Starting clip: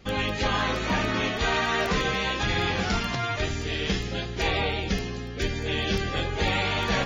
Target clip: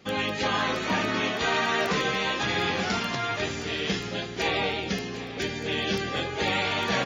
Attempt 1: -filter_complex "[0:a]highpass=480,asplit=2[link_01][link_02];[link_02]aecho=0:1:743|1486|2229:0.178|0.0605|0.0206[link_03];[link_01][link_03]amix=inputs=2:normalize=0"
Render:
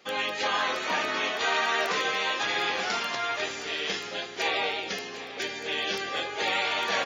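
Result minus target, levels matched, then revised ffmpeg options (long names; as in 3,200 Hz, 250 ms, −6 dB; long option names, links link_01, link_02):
125 Hz band −16.0 dB
-filter_complex "[0:a]highpass=150,asplit=2[link_01][link_02];[link_02]aecho=0:1:743|1486|2229:0.178|0.0605|0.0206[link_03];[link_01][link_03]amix=inputs=2:normalize=0"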